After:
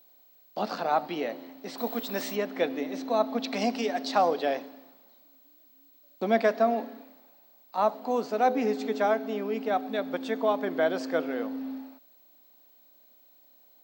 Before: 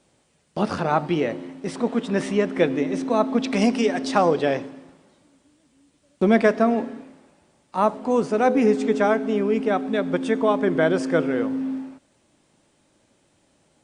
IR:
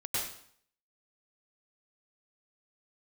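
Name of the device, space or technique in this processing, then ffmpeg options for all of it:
old television with a line whistle: -filter_complex "[0:a]highpass=f=230:w=0.5412,highpass=f=230:w=1.3066,equalizer=f=360:t=q:w=4:g=-6,equalizer=f=720:t=q:w=4:g=7,equalizer=f=4.2k:t=q:w=4:g=10,lowpass=f=7.4k:w=0.5412,lowpass=f=7.4k:w=1.3066,aeval=exprs='val(0)+0.00355*sin(2*PI*15734*n/s)':c=same,asettb=1/sr,asplit=3[a][b][c];[a]atrim=end=1.784[d];[b]atrim=start=1.78:end=2.36,asetpts=PTS-STARTPTS,afade=t=in:d=0.004:c=qsin,afade=t=out:st=0.576:d=0.004:c=qsin,aemphasis=mode=production:type=50fm[e];[c]atrim=start=2.356[f];[d][e]acrossfade=d=0.004:c1=hsin:c2=qsin[g];[g][f]acrossfade=d=0.004:c1=qsin:c2=hsin,volume=-7dB"

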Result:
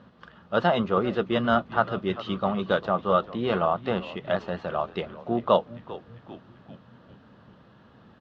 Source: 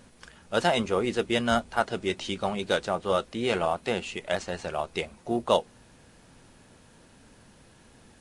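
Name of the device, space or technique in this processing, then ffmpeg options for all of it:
frequency-shifting delay pedal into a guitar cabinet: -filter_complex "[0:a]asplit=6[a][b][c][d][e][f];[b]adelay=395,afreqshift=-120,volume=-16.5dB[g];[c]adelay=790,afreqshift=-240,volume=-21.7dB[h];[d]adelay=1185,afreqshift=-360,volume=-26.9dB[i];[e]adelay=1580,afreqshift=-480,volume=-32.1dB[j];[f]adelay=1975,afreqshift=-600,volume=-37.3dB[k];[a][g][h][i][j][k]amix=inputs=6:normalize=0,highpass=76,equalizer=f=120:t=q:w=4:g=4,equalizer=f=190:t=q:w=4:g=7,equalizer=f=600:t=q:w=4:g=3,equalizer=f=1.2k:t=q:w=4:g=8,equalizer=f=2.3k:t=q:w=4:g=-10,lowpass=f=3.5k:w=0.5412,lowpass=f=3.5k:w=1.3066"

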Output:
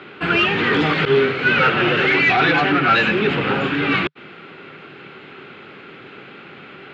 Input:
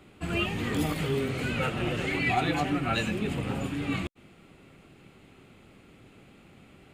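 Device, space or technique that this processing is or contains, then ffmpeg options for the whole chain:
overdrive pedal into a guitar cabinet: -filter_complex "[0:a]asplit=2[a][b];[b]highpass=f=720:p=1,volume=19dB,asoftclip=type=tanh:threshold=-14dB[c];[a][c]amix=inputs=2:normalize=0,lowpass=f=6.8k:p=1,volume=-6dB,highpass=96,equalizer=f=150:t=q:w=4:g=5,equalizer=f=400:t=q:w=4:g=6,equalizer=f=670:t=q:w=4:g=-4,equalizer=f=1.5k:t=q:w=4:g=8,lowpass=f=4k:w=0.5412,lowpass=f=4k:w=1.3066,asettb=1/sr,asplit=3[d][e][f];[d]atrim=end=1.054[g];[e]atrim=start=1.05:end=1.51,asetpts=PTS-STARTPTS,afade=t=in:d=0.004:c=qsin,afade=t=out:st=0.456:d=0.004:c=qsin,agate=range=-33dB:threshold=-18dB:ratio=3:detection=peak[h];[f]atrim=start=1.506[i];[g][h]acrossfade=d=0.004:c1=hsin:c2=qsin[j];[j][i]acrossfade=d=0.004:c1=qsin:c2=hsin,volume=5dB"

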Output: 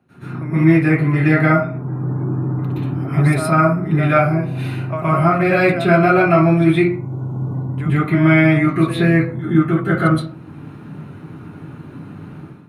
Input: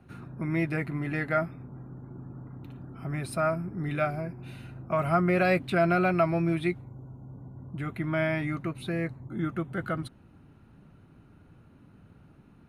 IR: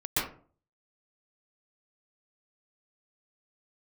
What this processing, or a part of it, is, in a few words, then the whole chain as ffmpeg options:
far laptop microphone: -filter_complex "[0:a]asettb=1/sr,asplit=3[a][b][c];[a]atrim=end=6.974[d];[b]atrim=start=6.97:end=7.53,asetpts=PTS-STARTPTS,afade=t=in:d=0.004:c=qsin,afade=t=out:st=0.556:d=0.004:c=qsin,equalizer=f=3.3k:t=o:w=1.5:g=5[e];[c]atrim=start=7.526[f];[d][e]acrossfade=d=0.004:c1=hsin:c2=qsin[g];[g][f]acrossfade=d=0.004:c1=qsin:c2=hsin[h];[1:a]atrim=start_sample=2205[i];[h][i]afir=irnorm=-1:irlink=0,highpass=130,dynaudnorm=f=120:g=5:m=12dB,volume=-1dB"

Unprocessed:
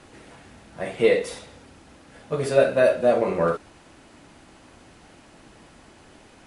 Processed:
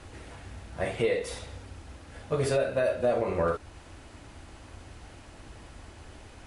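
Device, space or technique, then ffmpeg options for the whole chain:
car stereo with a boomy subwoofer: -af "lowshelf=f=120:t=q:w=1.5:g=9.5,alimiter=limit=-16.5dB:level=0:latency=1:release=331"

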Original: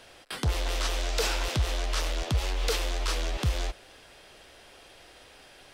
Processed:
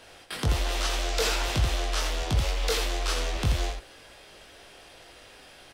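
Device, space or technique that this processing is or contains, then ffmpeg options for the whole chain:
slapback doubling: -filter_complex "[0:a]asplit=3[a][b][c];[b]adelay=20,volume=-4dB[d];[c]adelay=83,volume=-5.5dB[e];[a][d][e]amix=inputs=3:normalize=0"

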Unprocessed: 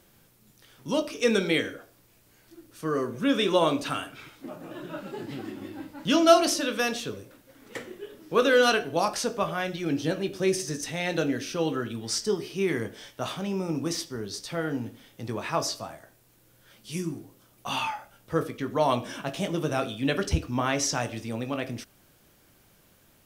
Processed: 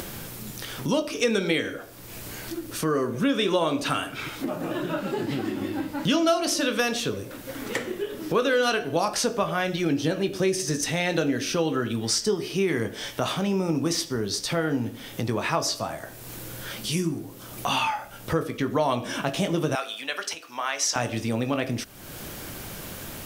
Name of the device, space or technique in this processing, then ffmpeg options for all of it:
upward and downward compression: -filter_complex "[0:a]acompressor=mode=upward:threshold=-29dB:ratio=2.5,acompressor=threshold=-27dB:ratio=4,asettb=1/sr,asplit=3[a][b][c];[a]atrim=end=19.754[d];[b]atrim=start=19.75:end=20.96,asetpts=PTS-STARTPTS,afade=t=in:d=0.004:c=qsin,afade=t=out:st=1.206:d=0.004:c=qsin,highpass=870[e];[c]atrim=start=20.956[f];[d][e]acrossfade=d=0.004:c1=hsin:c2=qsin[g];[g][f]acrossfade=d=0.004:c1=qsin:c2=hsin,volume=6.5dB"

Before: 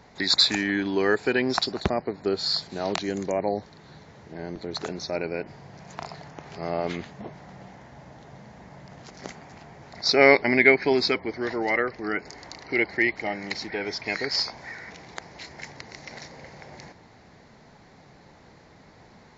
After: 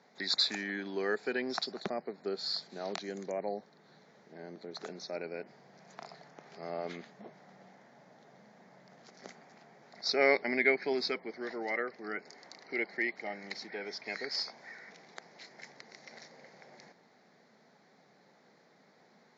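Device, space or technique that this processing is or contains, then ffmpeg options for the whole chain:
television speaker: -filter_complex "[0:a]highpass=f=190:w=0.5412,highpass=f=190:w=1.3066,equalizer=f=300:t=q:w=4:g=-6,equalizer=f=970:t=q:w=4:g=-5,equalizer=f=2.8k:t=q:w=4:g=-6,lowpass=f=6.9k:w=0.5412,lowpass=f=6.9k:w=1.3066,asplit=3[a][b][c];[a]afade=t=out:st=3.54:d=0.02[d];[b]adynamicequalizer=threshold=0.00224:dfrequency=1800:dqfactor=0.7:tfrequency=1800:tqfactor=0.7:attack=5:release=100:ratio=0.375:range=2:mode=cutabove:tftype=highshelf,afade=t=in:st=3.54:d=0.02,afade=t=out:st=4.78:d=0.02[e];[c]afade=t=in:st=4.78:d=0.02[f];[d][e][f]amix=inputs=3:normalize=0,volume=-9dB"

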